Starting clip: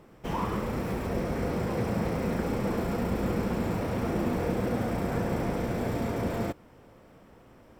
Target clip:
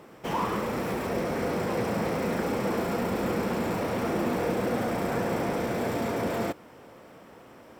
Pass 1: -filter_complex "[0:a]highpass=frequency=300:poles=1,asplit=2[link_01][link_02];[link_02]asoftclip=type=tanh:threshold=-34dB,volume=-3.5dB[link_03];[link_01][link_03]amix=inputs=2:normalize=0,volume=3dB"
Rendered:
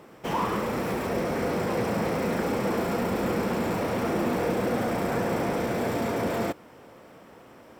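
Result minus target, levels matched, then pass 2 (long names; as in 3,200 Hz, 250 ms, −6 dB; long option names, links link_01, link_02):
soft clipping: distortion −5 dB
-filter_complex "[0:a]highpass=frequency=300:poles=1,asplit=2[link_01][link_02];[link_02]asoftclip=type=tanh:threshold=-42.5dB,volume=-3.5dB[link_03];[link_01][link_03]amix=inputs=2:normalize=0,volume=3dB"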